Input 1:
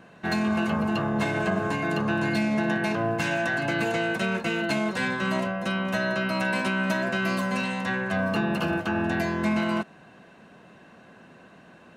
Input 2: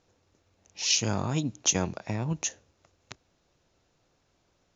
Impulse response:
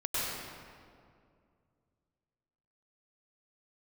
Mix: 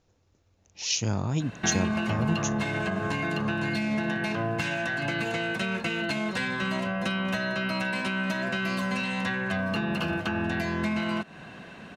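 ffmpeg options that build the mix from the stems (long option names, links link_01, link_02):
-filter_complex "[0:a]equalizer=frequency=3200:width_type=o:width=2.5:gain=7,acompressor=threshold=-30dB:ratio=12,adelay=1400,volume=3dB[link_01];[1:a]volume=-3dB[link_02];[link_01][link_02]amix=inputs=2:normalize=0,lowshelf=frequency=180:gain=8.5"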